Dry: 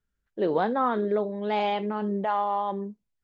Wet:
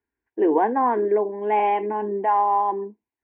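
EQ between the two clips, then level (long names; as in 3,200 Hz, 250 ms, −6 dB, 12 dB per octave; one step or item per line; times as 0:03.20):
high-frequency loss of the air 76 metres
loudspeaker in its box 130–2,500 Hz, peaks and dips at 320 Hz +5 dB, 590 Hz +7 dB, 1,000 Hz +5 dB
phaser with its sweep stopped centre 860 Hz, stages 8
+5.5 dB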